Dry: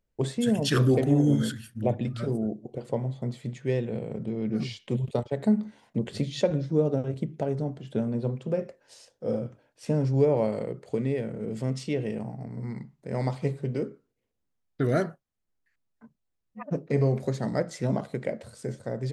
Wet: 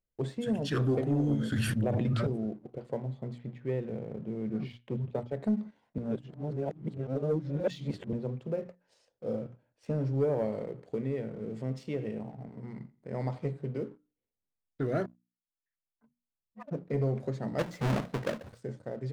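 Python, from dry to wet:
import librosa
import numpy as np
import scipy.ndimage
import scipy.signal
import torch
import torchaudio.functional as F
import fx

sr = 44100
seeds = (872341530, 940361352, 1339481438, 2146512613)

y = fx.env_flatten(x, sr, amount_pct=100, at=(1.52, 2.27))
y = fx.lowpass(y, sr, hz=3000.0, slope=12, at=(3.38, 5.19))
y = fx.echo_feedback(y, sr, ms=87, feedback_pct=35, wet_db=-18, at=(9.45, 13.51))
y = fx.halfwave_hold(y, sr, at=(17.58, 18.58), fade=0.02)
y = fx.edit(y, sr, fx.reverse_span(start_s=5.98, length_s=2.15),
    fx.fade_in_span(start_s=15.06, length_s=1.8), tone=tone)
y = fx.lowpass(y, sr, hz=2300.0, slope=6)
y = fx.hum_notches(y, sr, base_hz=60, count=5)
y = fx.leveller(y, sr, passes=1)
y = F.gain(torch.from_numpy(y), -8.5).numpy()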